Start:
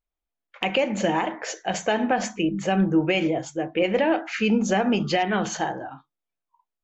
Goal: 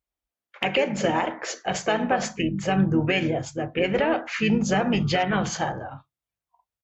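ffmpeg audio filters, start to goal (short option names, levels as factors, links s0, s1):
-filter_complex "[0:a]highpass=f=43:w=0.5412,highpass=f=43:w=1.3066,asubboost=boost=8:cutoff=100,asplit=2[s0][s1];[s1]asetrate=33038,aresample=44100,atempo=1.33484,volume=0.398[s2];[s0][s2]amix=inputs=2:normalize=0"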